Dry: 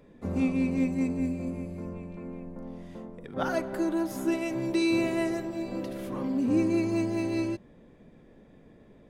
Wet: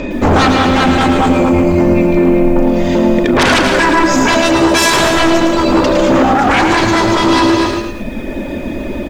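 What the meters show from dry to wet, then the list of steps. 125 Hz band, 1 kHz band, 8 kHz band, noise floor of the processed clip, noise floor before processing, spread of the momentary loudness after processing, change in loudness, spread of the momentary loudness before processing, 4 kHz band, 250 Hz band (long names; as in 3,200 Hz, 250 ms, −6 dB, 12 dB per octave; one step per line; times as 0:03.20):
+18.5 dB, +28.5 dB, +26.0 dB, −22 dBFS, −55 dBFS, 11 LU, +18.5 dB, 15 LU, +28.0 dB, +16.5 dB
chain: elliptic low-pass filter 7,200 Hz
reverb reduction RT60 1.1 s
comb filter 3.3 ms, depth 66%
in parallel at −2 dB: downward compressor, threshold −36 dBFS, peak gain reduction 16 dB
on the sum: steady tone 2,500 Hz −61 dBFS
sine wavefolder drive 14 dB, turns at −15.5 dBFS
on a send: multi-tap delay 149/238/315 ms −11/−10/−18 dB
on the sum: boost into a limiter +16.5 dB
feedback echo at a low word length 109 ms, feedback 35%, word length 6 bits, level −6 dB
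level −4.5 dB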